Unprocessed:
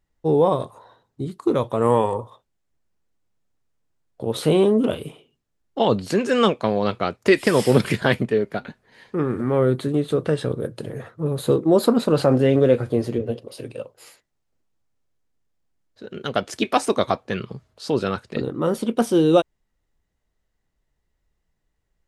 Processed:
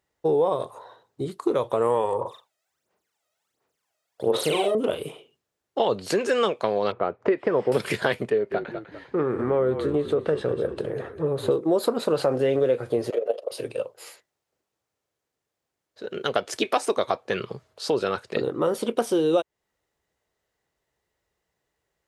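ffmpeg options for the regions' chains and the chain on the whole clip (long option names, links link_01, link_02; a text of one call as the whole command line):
ffmpeg -i in.wav -filter_complex "[0:a]asettb=1/sr,asplit=3[link_01][link_02][link_03];[link_01]atrim=end=2.214[link_04];[link_02]atrim=start=2.21:end=4.75,asetpts=PTS-STARTPTS,afade=type=in:duration=0.004:curve=qsin,afade=type=out:start_time=2.536:duration=0.004:curve=qsin,highpass=frequency=440:poles=1,aphaser=in_gain=1:out_gain=1:delay=1.6:decay=0.79:speed=1.4:type=sinusoidal,asplit=2[link_05][link_06];[link_06]adelay=40,volume=-5.5dB[link_07];[link_05][link_07]amix=inputs=2:normalize=0,atrim=end_sample=112014[link_08];[link_03]atrim=start=4.746[link_09];[link_04][link_08]acrossfade=duration=0.004:curve1=hsin:curve2=qsin[link_10];[link_10][link_09]acrossfade=duration=0.004:curve1=qsin:curve2=hsin,asettb=1/sr,asplit=3[link_11][link_12][link_13];[link_11]atrim=end=6.924[link_14];[link_12]atrim=start=6.92:end=7.72,asetpts=PTS-STARTPTS,afade=type=in:duration=0.004:curve=qsin,afade=type=out:start_time=0.796:duration=0.004:curve=qsin,lowpass=1300,acompressor=mode=upward:threshold=-32dB:ratio=2.5:attack=3.2:release=140:knee=2.83:detection=peak[link_15];[link_13]atrim=start=7.716[link_16];[link_14][link_15]acrossfade=duration=0.004:curve1=hsin:curve2=qsin[link_17];[link_17][link_16]acrossfade=duration=0.004:curve1=qsin:curve2=hsin,asettb=1/sr,asplit=3[link_18][link_19][link_20];[link_18]atrim=end=8.304[link_21];[link_19]atrim=start=8.3:end=11.51,asetpts=PTS-STARTPTS,afade=type=in:duration=0.004:curve=qsin,afade=type=out:start_time=3.206:duration=0.004:curve=qsin,lowpass=frequency=2200:poles=1,asplit=5[link_22][link_23][link_24][link_25][link_26];[link_23]adelay=199,afreqshift=-46,volume=-11dB[link_27];[link_24]adelay=398,afreqshift=-92,volume=-18.7dB[link_28];[link_25]adelay=597,afreqshift=-138,volume=-26.5dB[link_29];[link_26]adelay=796,afreqshift=-184,volume=-34.2dB[link_30];[link_22][link_27][link_28][link_29][link_30]amix=inputs=5:normalize=0,atrim=end_sample=141561[link_31];[link_20]atrim=start=11.506[link_32];[link_21][link_31]acrossfade=duration=0.004:curve1=hsin:curve2=qsin[link_33];[link_33][link_32]acrossfade=duration=0.004:curve1=qsin:curve2=hsin,asettb=1/sr,asplit=3[link_34][link_35][link_36];[link_34]atrim=end=13.104[link_37];[link_35]atrim=start=13.1:end=13.51,asetpts=PTS-STARTPTS,afade=type=in:duration=0.004:curve=qsin,afade=type=out:start_time=0.406:duration=0.004:curve=qsin,tremolo=f=24:d=0.71,highpass=frequency=600:width_type=q:width=4.6,equalizer=frequency=1300:width_type=o:width=0.21:gain=8.5[link_38];[link_36]atrim=start=13.506[link_39];[link_37][link_38]acrossfade=duration=0.004:curve1=hsin:curve2=qsin[link_40];[link_40][link_39]acrossfade=duration=0.004:curve1=qsin:curve2=hsin,highpass=84,lowshelf=frequency=320:width_type=q:width=1.5:gain=-6.5,acompressor=threshold=-24dB:ratio=3,volume=3dB" out.wav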